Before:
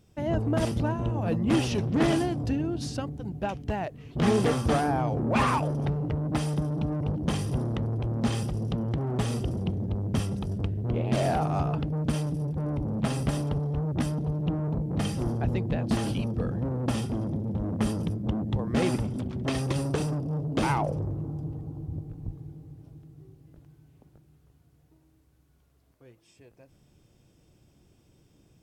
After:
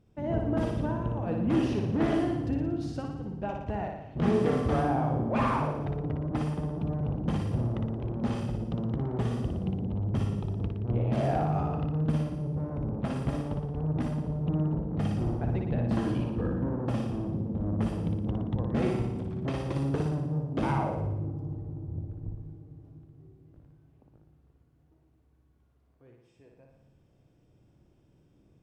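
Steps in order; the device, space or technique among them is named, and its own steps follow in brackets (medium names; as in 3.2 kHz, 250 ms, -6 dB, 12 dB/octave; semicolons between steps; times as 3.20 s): 15.97–16.85 s: graphic EQ with 31 bands 315 Hz +7 dB, 1 kHz +6 dB, 1.6 kHz +7 dB; through cloth (treble shelf 3.2 kHz -15 dB); flutter echo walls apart 10 m, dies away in 0.84 s; trim -3.5 dB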